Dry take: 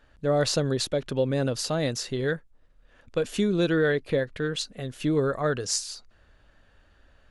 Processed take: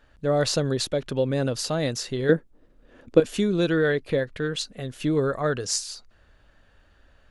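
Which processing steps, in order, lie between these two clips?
2.29–3.20 s: peaking EQ 310 Hz +14.5 dB 1.8 oct; trim +1 dB

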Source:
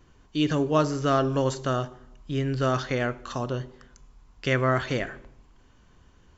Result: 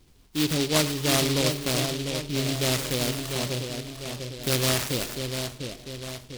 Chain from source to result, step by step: two-band feedback delay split 1.2 kHz, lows 698 ms, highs 107 ms, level -6 dB; delay time shaken by noise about 3.5 kHz, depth 0.23 ms; trim -1 dB

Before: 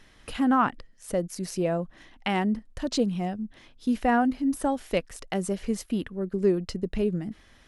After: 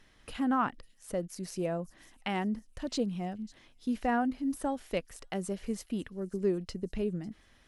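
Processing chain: feedback echo behind a high-pass 549 ms, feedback 39%, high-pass 5.4 kHz, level -15.5 dB; trim -6.5 dB

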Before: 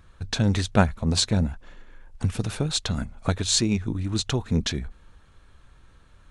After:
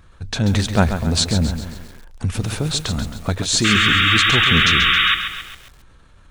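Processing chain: painted sound noise, 3.64–5.15 s, 1.1–3.8 kHz -21 dBFS; transient shaper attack -3 dB, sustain +3 dB; bit-crushed delay 135 ms, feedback 55%, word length 7-bit, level -8.5 dB; trim +4.5 dB

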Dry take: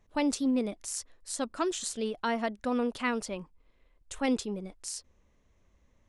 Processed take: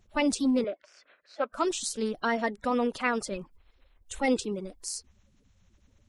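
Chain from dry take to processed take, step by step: coarse spectral quantiser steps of 30 dB; 0.64–1.53 s: cabinet simulation 420–3100 Hz, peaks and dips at 580 Hz +8 dB, 890 Hz -8 dB, 1.5 kHz +9 dB, 2.4 kHz +4 dB; trim +3 dB

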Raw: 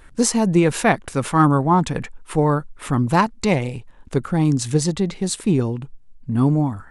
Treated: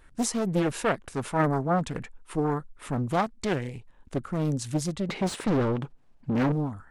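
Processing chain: 5.09–6.52 s: overdrive pedal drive 28 dB, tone 1.3 kHz, clips at -7 dBFS; loudspeaker Doppler distortion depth 0.68 ms; trim -9 dB

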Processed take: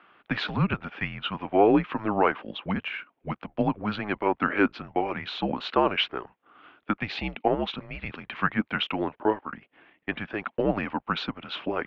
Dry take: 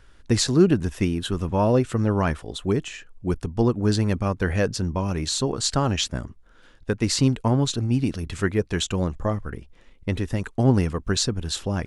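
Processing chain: mistuned SSB -210 Hz 510–3200 Hz; time-frequency box 7.03–7.47 s, 890–2000 Hz -7 dB; trim +5 dB

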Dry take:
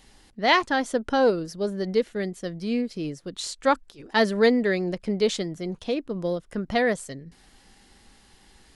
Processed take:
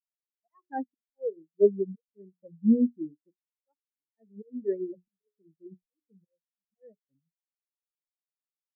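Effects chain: hum notches 60/120/180/240/300/360/420 Hz; slow attack 455 ms; spectral contrast expander 4:1; trim +6.5 dB

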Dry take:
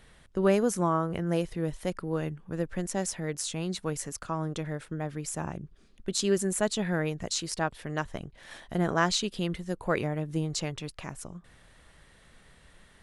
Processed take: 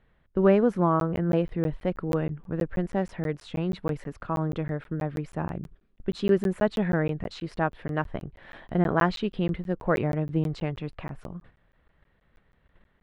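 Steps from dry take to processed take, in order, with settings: gate -52 dBFS, range -12 dB; distance through air 470 m; crackling interface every 0.16 s, samples 512, zero, from 1.00 s; trim +5 dB

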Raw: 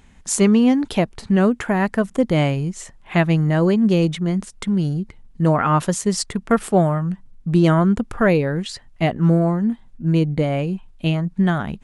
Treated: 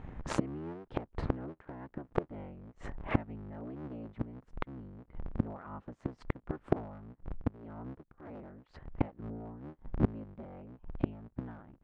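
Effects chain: cycle switcher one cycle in 3, inverted; low-pass 1.3 kHz 12 dB/octave; inverted gate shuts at -19 dBFS, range -32 dB; 7.13–9.19 s: tremolo triangle 1.7 Hz, depth 75%; trim +5 dB

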